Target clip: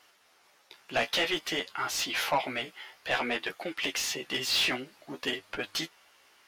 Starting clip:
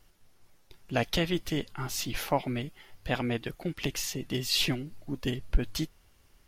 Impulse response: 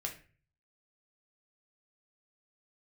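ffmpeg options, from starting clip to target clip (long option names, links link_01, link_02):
-filter_complex "[0:a]highpass=frequency=660:poles=1,flanger=delay=9.2:depth=7.8:regen=24:speed=0.54:shape=triangular,asplit=2[link_01][link_02];[link_02]highpass=frequency=720:poles=1,volume=19dB,asoftclip=type=tanh:threshold=-18dB[link_03];[link_01][link_03]amix=inputs=2:normalize=0,lowpass=frequency=3000:poles=1,volume=-6dB,volume=2dB"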